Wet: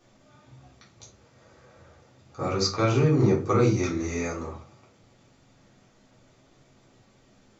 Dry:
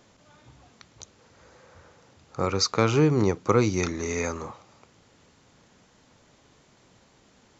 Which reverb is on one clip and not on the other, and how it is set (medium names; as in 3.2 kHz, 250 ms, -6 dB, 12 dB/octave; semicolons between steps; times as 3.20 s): simulated room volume 200 m³, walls furnished, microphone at 3.6 m; trim -9.5 dB